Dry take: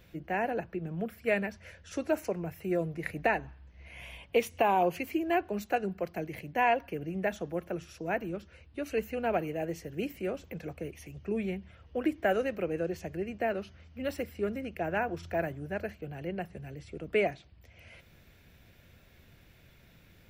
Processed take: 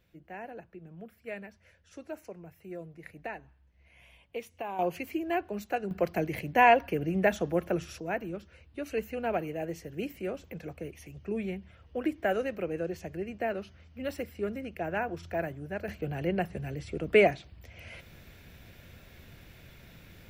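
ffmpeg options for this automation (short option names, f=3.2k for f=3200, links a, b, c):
-af "asetnsamples=n=441:p=0,asendcmd='4.79 volume volume -2dB;5.91 volume volume 6dB;8 volume volume -1dB;15.88 volume volume 6.5dB',volume=-11.5dB"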